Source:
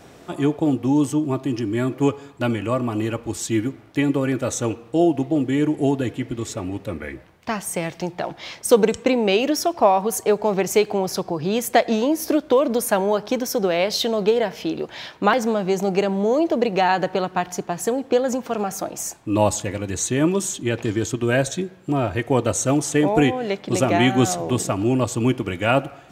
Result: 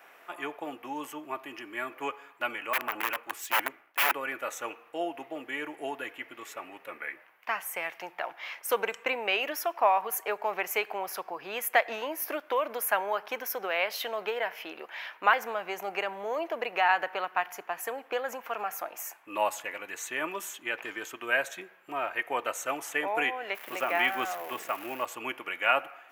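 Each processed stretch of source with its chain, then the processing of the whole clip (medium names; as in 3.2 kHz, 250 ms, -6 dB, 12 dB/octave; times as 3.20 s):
2.73–4.13 s: integer overflow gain 16.5 dB + waveshaping leveller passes 1 + three bands expanded up and down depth 100%
23.54–25.04 s: treble shelf 5.5 kHz -9 dB + crackle 580 per s -27 dBFS
whole clip: high-pass 1.1 kHz 12 dB/octave; high-order bell 5.7 kHz -15 dB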